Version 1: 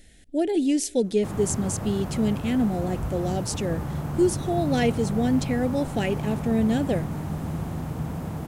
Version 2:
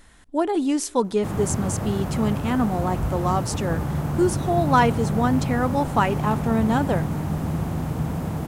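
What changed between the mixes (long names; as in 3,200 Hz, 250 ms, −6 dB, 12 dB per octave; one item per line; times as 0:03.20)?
speech: remove Butterworth band-reject 1,100 Hz, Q 0.85
background +4.5 dB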